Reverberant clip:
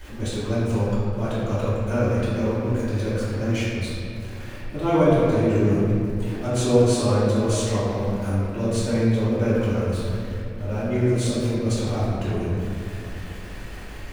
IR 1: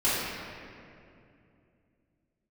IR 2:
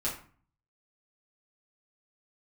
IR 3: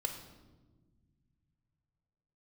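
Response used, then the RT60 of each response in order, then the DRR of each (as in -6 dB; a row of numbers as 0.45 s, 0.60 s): 1; 2.6 s, 0.45 s, 1.4 s; -13.0 dB, -7.5 dB, 3.5 dB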